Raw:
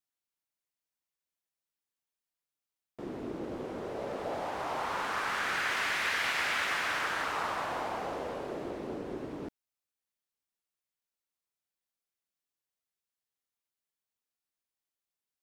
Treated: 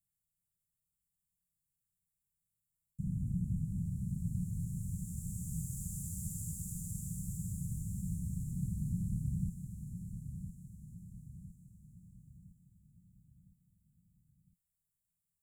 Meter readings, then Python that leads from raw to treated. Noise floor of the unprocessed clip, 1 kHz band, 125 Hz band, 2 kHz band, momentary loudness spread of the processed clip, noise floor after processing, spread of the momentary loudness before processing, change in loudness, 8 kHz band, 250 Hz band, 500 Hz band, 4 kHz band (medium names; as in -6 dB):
under -85 dBFS, under -40 dB, +15.5 dB, under -40 dB, 17 LU, under -85 dBFS, 11 LU, -6.5 dB, +1.5 dB, +2.5 dB, under -40 dB, under -30 dB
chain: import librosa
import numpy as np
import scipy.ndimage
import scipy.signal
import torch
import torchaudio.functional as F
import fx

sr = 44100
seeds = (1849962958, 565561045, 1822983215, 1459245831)

y = scipy.signal.sosfilt(scipy.signal.cheby1(5, 1.0, [180.0, 7300.0], 'bandstop', fs=sr, output='sos'), x)
y = fx.tilt_shelf(y, sr, db=5.5, hz=1300.0)
y = fx.echo_feedback(y, sr, ms=1009, feedback_pct=47, wet_db=-8.5)
y = y * librosa.db_to_amplitude(10.5)